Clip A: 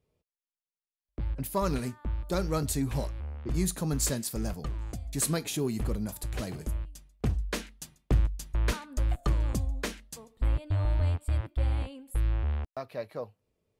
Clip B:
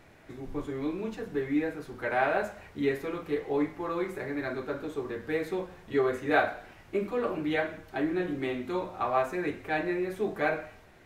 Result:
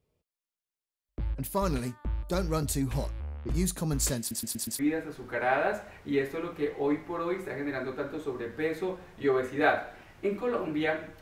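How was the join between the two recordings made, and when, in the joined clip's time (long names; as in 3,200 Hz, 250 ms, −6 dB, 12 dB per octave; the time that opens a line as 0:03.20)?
clip A
0:04.19: stutter in place 0.12 s, 5 plays
0:04.79: continue with clip B from 0:01.49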